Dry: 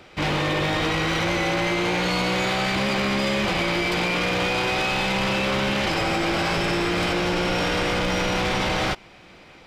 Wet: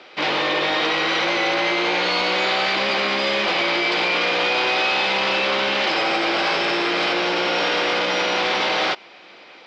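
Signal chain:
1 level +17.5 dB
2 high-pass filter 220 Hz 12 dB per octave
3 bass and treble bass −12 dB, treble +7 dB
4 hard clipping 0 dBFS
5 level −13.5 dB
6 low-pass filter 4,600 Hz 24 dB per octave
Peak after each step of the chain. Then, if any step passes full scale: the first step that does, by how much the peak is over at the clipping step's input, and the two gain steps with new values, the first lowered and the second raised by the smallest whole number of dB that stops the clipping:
−1.0, +4.5, +7.0, 0.0, −13.5, −12.0 dBFS
step 2, 7.0 dB
step 1 +10.5 dB, step 5 −6.5 dB

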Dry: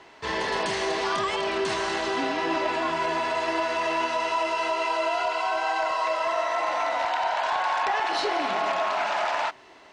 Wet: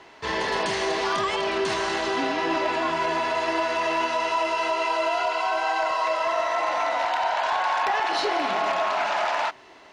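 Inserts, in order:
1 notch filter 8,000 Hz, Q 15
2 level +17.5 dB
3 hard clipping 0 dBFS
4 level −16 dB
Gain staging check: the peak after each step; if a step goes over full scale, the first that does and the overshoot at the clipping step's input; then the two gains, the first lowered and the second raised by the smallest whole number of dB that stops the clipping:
−14.0, +3.5, 0.0, −16.0 dBFS
step 2, 3.5 dB
step 2 +13.5 dB, step 4 −12 dB

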